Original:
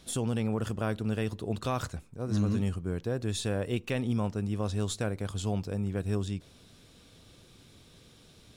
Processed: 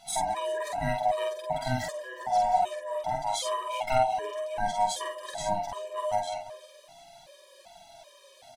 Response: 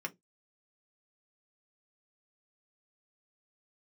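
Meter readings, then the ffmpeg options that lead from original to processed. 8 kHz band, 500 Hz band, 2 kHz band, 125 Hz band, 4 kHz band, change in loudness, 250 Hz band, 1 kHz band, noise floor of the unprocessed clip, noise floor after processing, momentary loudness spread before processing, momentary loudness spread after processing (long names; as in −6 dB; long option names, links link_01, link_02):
+3.5 dB, +4.5 dB, +4.0 dB, −11.0 dB, +3.5 dB, +2.5 dB, −12.0 dB, +15.5 dB, −57 dBFS, −55 dBFS, 4 LU, 10 LU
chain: -filter_complex "[0:a]afftfilt=real='real(if(lt(b,1008),b+24*(1-2*mod(floor(b/24),2)),b),0)':imag='imag(if(lt(b,1008),b+24*(1-2*mod(floor(b/24),2)),b),0)':win_size=2048:overlap=0.75,asplit=2[link_01][link_02];[link_02]adelay=367.3,volume=-11dB,highshelf=frequency=4000:gain=-8.27[link_03];[link_01][link_03]amix=inputs=2:normalize=0,crystalizer=i=6.5:c=0,flanger=delay=5.3:depth=2.8:regen=21:speed=0.4:shape=sinusoidal,lowpass=frequency=1400:poles=1,deesser=0.25,aeval=exprs='val(0)+0.000794*sin(2*PI*690*n/s)':channel_layout=same,asplit=2[link_04][link_05];[link_05]adelay=48,volume=-3dB[link_06];[link_04][link_06]amix=inputs=2:normalize=0,afftfilt=real='re*gt(sin(2*PI*1.3*pts/sr)*(1-2*mod(floor(b*sr/1024/320),2)),0)':imag='im*gt(sin(2*PI*1.3*pts/sr)*(1-2*mod(floor(b*sr/1024/320),2)),0)':win_size=1024:overlap=0.75,volume=5.5dB"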